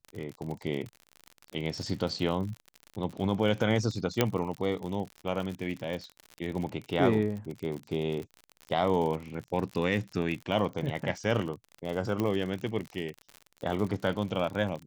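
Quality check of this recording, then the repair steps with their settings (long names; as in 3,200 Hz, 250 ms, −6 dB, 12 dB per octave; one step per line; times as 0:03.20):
surface crackle 54 per second −34 dBFS
0:04.21: click −8 dBFS
0:12.20: click −17 dBFS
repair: click removal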